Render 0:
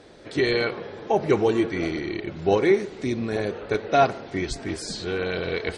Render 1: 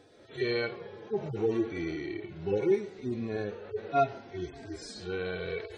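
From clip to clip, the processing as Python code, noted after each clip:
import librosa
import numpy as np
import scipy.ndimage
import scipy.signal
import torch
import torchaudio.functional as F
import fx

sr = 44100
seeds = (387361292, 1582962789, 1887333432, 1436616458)

y = fx.hpss_only(x, sr, part='harmonic')
y = y * 10.0 ** (-6.5 / 20.0)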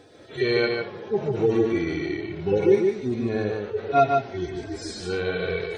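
y = x + 10.0 ** (-4.0 / 20.0) * np.pad(x, (int(149 * sr / 1000.0), 0))[:len(x)]
y = y * 10.0 ** (7.0 / 20.0)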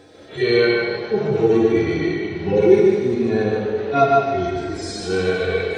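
y = fx.rev_plate(x, sr, seeds[0], rt60_s=1.8, hf_ratio=0.9, predelay_ms=0, drr_db=0.5)
y = y * 10.0 ** (3.0 / 20.0)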